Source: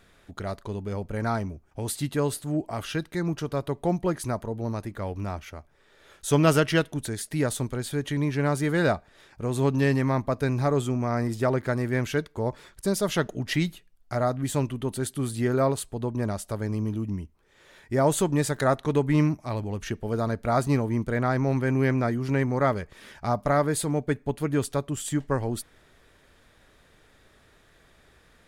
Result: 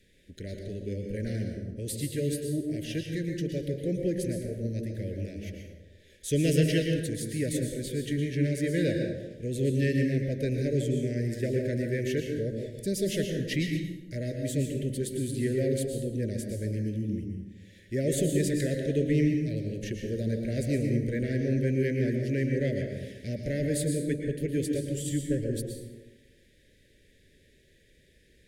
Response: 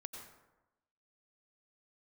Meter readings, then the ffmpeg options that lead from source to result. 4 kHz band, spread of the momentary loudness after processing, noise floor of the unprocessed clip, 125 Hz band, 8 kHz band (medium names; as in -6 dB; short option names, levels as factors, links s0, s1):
-3.0 dB, 9 LU, -60 dBFS, -2.0 dB, -3.0 dB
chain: -filter_complex "[0:a]acrossover=split=670|1200[s0][s1][s2];[s1]asoftclip=type=tanh:threshold=0.0376[s3];[s0][s3][s2]amix=inputs=3:normalize=0,asuperstop=centerf=1000:order=12:qfactor=0.87[s4];[1:a]atrim=start_sample=2205,asetrate=35721,aresample=44100[s5];[s4][s5]afir=irnorm=-1:irlink=0"